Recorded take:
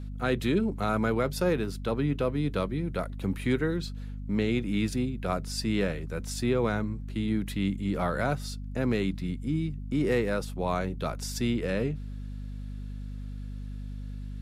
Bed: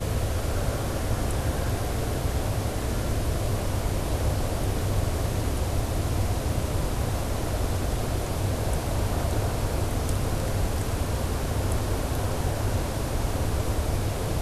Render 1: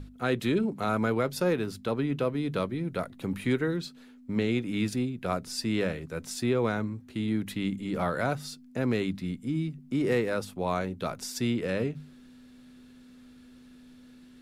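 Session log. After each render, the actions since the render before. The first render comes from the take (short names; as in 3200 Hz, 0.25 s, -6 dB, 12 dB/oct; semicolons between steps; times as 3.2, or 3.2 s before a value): notches 50/100/150/200 Hz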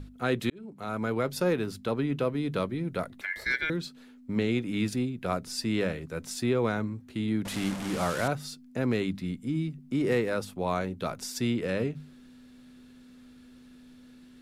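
0.5–1.32 fade in; 3.21–3.7 ring modulator 1900 Hz; 7.45–8.28 delta modulation 64 kbps, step -29.5 dBFS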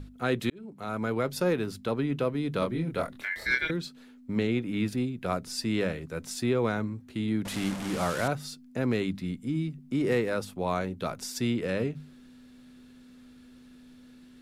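2.59–3.71 doubler 25 ms -3 dB; 4.47–4.98 bell 6800 Hz -6.5 dB 1.6 oct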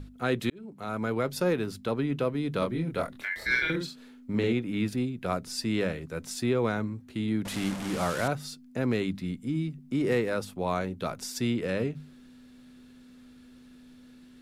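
3.5–4.53 doubler 49 ms -4 dB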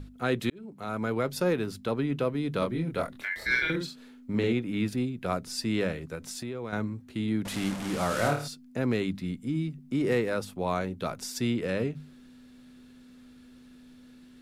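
6.15–6.73 compressor 3:1, threshold -35 dBFS; 8.08–8.48 flutter echo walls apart 4.6 m, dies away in 0.41 s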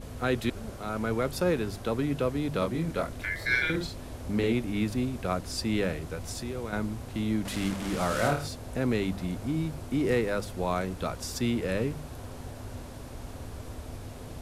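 add bed -14.5 dB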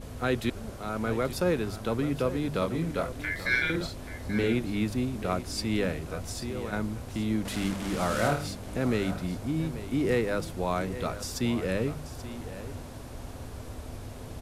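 echo 0.833 s -13.5 dB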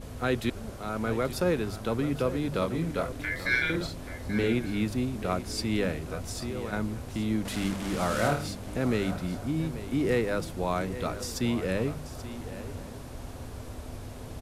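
outdoor echo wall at 190 m, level -19 dB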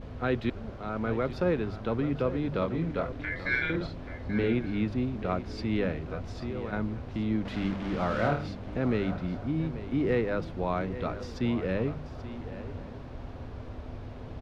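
air absorption 250 m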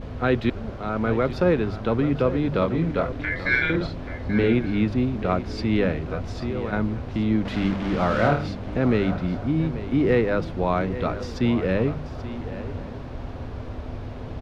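gain +7 dB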